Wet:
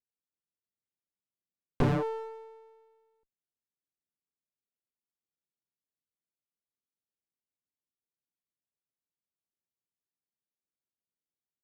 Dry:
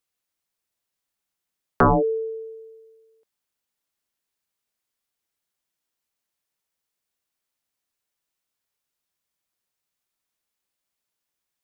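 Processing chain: local Wiener filter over 41 samples; high-pass 99 Hz 12 dB/octave; sliding maximum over 33 samples; trim -6.5 dB

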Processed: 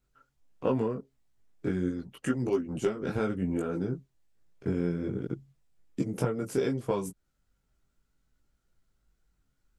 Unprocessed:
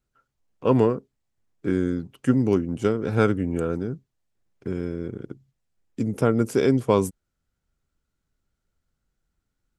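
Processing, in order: 1.89–3.16 s: harmonic-percussive split harmonic -12 dB; compression 10:1, threshold -27 dBFS, peak gain reduction 14 dB; chorus voices 6, 0.75 Hz, delay 19 ms, depth 4 ms; trim +5 dB

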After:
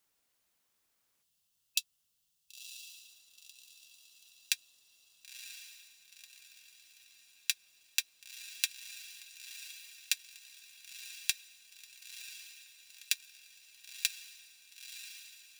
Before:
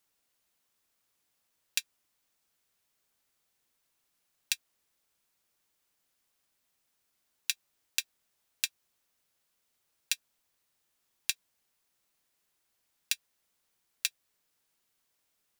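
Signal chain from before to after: time-frequency box 1.22–2.89 s, 210–2600 Hz -20 dB; on a send: echo that smears into a reverb 990 ms, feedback 50%, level -10 dB

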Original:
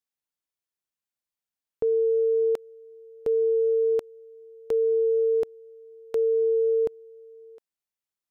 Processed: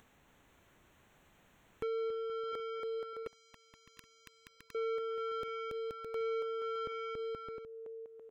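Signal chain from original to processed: local Wiener filter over 9 samples; bass shelf 300 Hz +8.5 dB; saturation -28.5 dBFS, distortion -10 dB; 1.86–2.52 s: comb 6.9 ms, depth 36%; on a send: bouncing-ball echo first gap 280 ms, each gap 0.7×, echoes 5; on the sum: peak limiter -33 dBFS, peak gain reduction 11 dB; 3.88–4.81 s: spectral replace 490–1000 Hz; upward compressor, threshold -40 dBFS; 3.27–4.75 s: spectrum-flattening compressor 10:1; trim -1 dB

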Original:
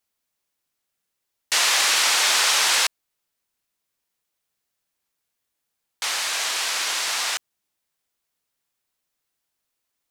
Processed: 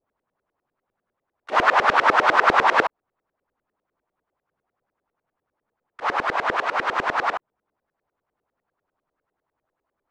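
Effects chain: harmony voices +4 st -3 dB, +7 st -11 dB, +12 st -16 dB; LFO low-pass saw up 10 Hz 380–1600 Hz; trim +6 dB

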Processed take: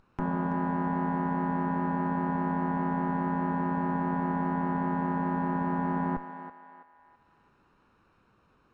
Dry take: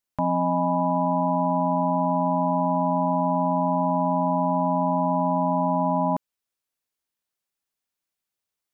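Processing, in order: comb filter that takes the minimum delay 0.74 ms; low-pass 1 kHz 12 dB/octave; upward compressor, threshold -33 dBFS; thinning echo 330 ms, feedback 45%, high-pass 560 Hz, level -8 dB; trim -3.5 dB

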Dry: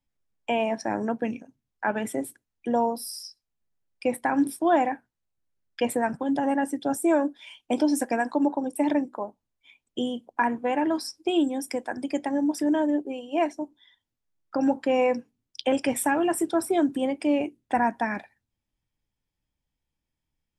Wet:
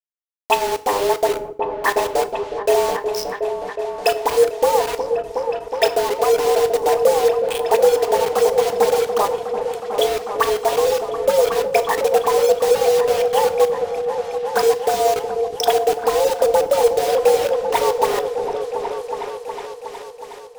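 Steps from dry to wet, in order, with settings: low-pass that closes with the level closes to 420 Hz, closed at -21.5 dBFS; RIAA curve recording; low-pass that closes with the level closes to 1.7 kHz, closed at -29.5 dBFS; bass shelf 210 Hz +11 dB; in parallel at +2 dB: compression 8:1, threshold -28 dBFS, peak gain reduction 8 dB; on the sum: transient shaper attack +4 dB, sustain -7 dB; overload inside the chain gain 13 dB; frequency shift +190 Hz; phase dispersion highs, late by 50 ms, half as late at 1.4 kHz; bit crusher 5-bit; on a send: delay with an opening low-pass 366 ms, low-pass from 400 Hz, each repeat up 1 oct, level -3 dB; on the sum: FDN reverb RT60 0.51 s, high-frequency decay 0.9×, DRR 11 dB; trim +4 dB

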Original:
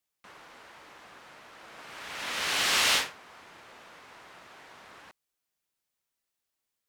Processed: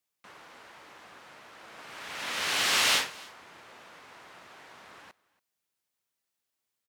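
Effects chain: high-pass 62 Hz; delay 282 ms -23 dB

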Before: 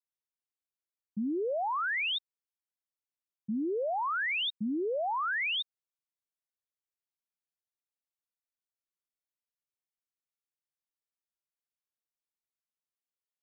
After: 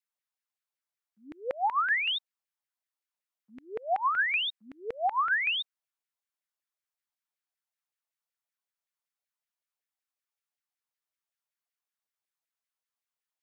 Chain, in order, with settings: LFO high-pass saw down 5.3 Hz 560–2100 Hz

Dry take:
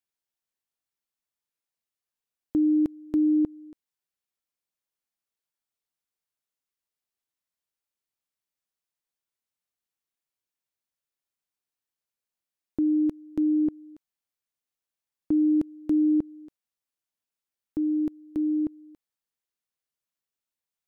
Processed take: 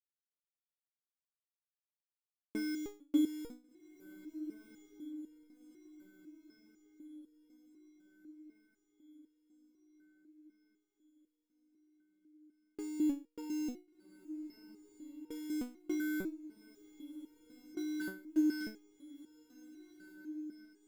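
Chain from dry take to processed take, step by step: gate with hold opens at -37 dBFS; 18.01–18.61 s: bass shelf 77 Hz -9.5 dB; in parallel at -11.5 dB: integer overflow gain 27.5 dB; on the sum: echo that smears into a reverb 1480 ms, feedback 54%, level -15 dB; resonator arpeggio 4 Hz 190–470 Hz; trim +9 dB

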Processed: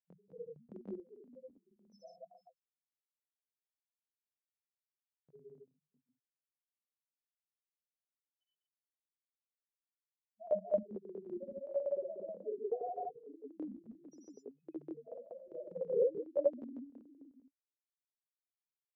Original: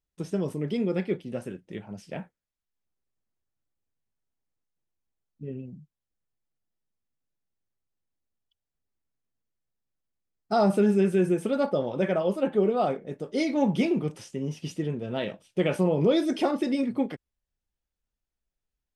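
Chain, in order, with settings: chunks repeated in reverse 226 ms, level -13.5 dB; loudest bins only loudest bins 1; LFO high-pass saw up 4.8 Hz 480–2300 Hz; square tremolo 1.7 Hz, depth 60%, duty 50%; granulator 254 ms, grains 28 per s, spray 137 ms, pitch spread up and down by 0 st; trim +10 dB

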